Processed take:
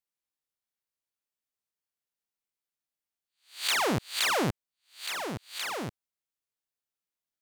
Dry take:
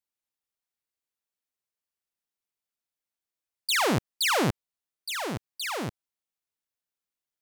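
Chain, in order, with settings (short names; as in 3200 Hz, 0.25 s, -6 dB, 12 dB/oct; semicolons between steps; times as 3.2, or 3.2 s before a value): spectral swells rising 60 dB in 0.34 s; gain -4 dB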